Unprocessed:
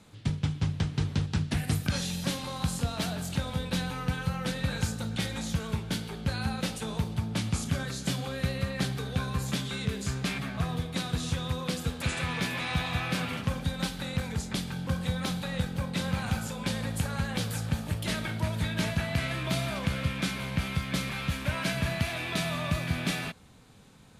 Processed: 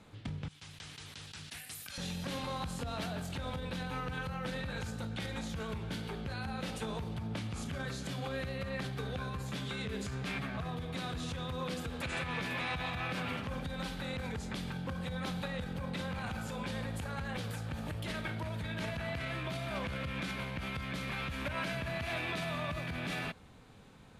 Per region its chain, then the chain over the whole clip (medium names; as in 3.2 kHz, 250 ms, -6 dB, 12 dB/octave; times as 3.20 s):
0.48–1.98 s: pre-emphasis filter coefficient 0.97 + decay stretcher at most 28 dB/s
whole clip: bass shelf 170 Hz +11.5 dB; peak limiter -24 dBFS; tone controls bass -10 dB, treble -8 dB